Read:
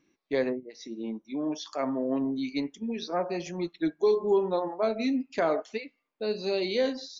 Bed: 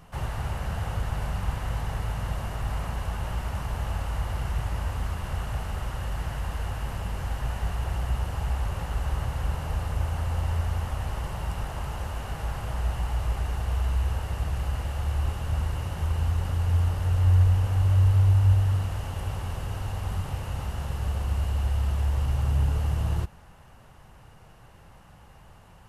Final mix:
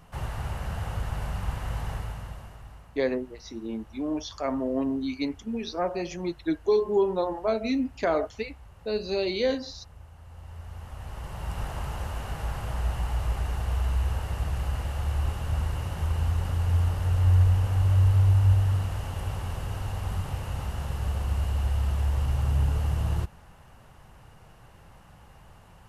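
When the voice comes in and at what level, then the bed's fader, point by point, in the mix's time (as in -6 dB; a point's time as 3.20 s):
2.65 s, +1.0 dB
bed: 1.92 s -2 dB
2.91 s -20.5 dB
10.18 s -20.5 dB
11.63 s -0.5 dB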